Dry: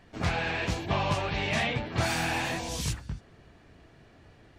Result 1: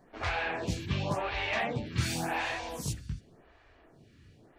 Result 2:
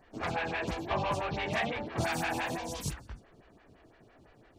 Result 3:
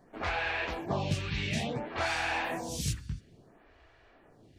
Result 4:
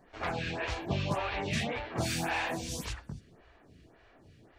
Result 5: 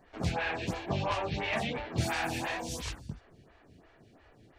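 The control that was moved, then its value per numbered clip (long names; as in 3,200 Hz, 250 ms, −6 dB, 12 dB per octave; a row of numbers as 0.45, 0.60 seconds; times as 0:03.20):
phaser with staggered stages, speed: 0.9, 5.9, 0.58, 1.8, 2.9 Hertz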